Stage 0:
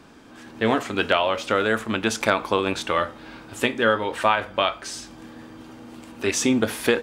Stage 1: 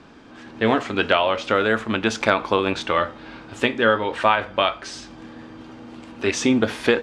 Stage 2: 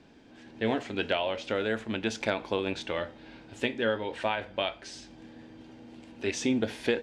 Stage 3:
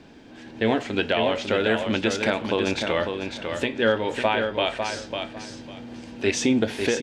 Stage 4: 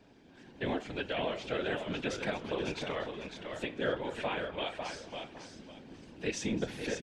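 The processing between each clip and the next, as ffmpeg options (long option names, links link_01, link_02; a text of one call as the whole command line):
ffmpeg -i in.wav -af "lowpass=5200,volume=2dB" out.wav
ffmpeg -i in.wav -af "equalizer=frequency=1200:width=2.9:gain=-12,volume=-8.5dB" out.wav
ffmpeg -i in.wav -filter_complex "[0:a]alimiter=limit=-17dB:level=0:latency=1:release=239,asplit=2[link_01][link_02];[link_02]aecho=0:1:550|1100|1650:0.501|0.105|0.0221[link_03];[link_01][link_03]amix=inputs=2:normalize=0,volume=8dB" out.wav
ffmpeg -i in.wav -filter_complex "[0:a]asplit=5[link_01][link_02][link_03][link_04][link_05];[link_02]adelay=240,afreqshift=-87,volume=-17dB[link_06];[link_03]adelay=480,afreqshift=-174,volume=-23.4dB[link_07];[link_04]adelay=720,afreqshift=-261,volume=-29.8dB[link_08];[link_05]adelay=960,afreqshift=-348,volume=-36.1dB[link_09];[link_01][link_06][link_07][link_08][link_09]amix=inputs=5:normalize=0,afftfilt=real='hypot(re,im)*cos(2*PI*random(0))':imag='hypot(re,im)*sin(2*PI*random(1))':win_size=512:overlap=0.75,volume=-6dB" out.wav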